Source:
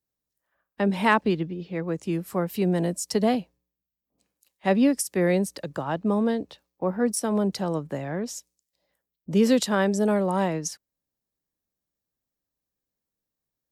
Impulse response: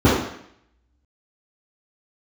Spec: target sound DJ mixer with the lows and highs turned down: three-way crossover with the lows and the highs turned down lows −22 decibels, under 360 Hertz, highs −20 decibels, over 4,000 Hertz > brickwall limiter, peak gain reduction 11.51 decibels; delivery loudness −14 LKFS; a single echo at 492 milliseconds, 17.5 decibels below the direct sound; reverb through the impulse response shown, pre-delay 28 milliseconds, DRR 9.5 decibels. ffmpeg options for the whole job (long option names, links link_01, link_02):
-filter_complex "[0:a]aecho=1:1:492:0.133,asplit=2[link_01][link_02];[1:a]atrim=start_sample=2205,adelay=28[link_03];[link_02][link_03]afir=irnorm=-1:irlink=0,volume=-33.5dB[link_04];[link_01][link_04]amix=inputs=2:normalize=0,acrossover=split=360 4000:gain=0.0794 1 0.1[link_05][link_06][link_07];[link_05][link_06][link_07]amix=inputs=3:normalize=0,volume=17.5dB,alimiter=limit=-3dB:level=0:latency=1"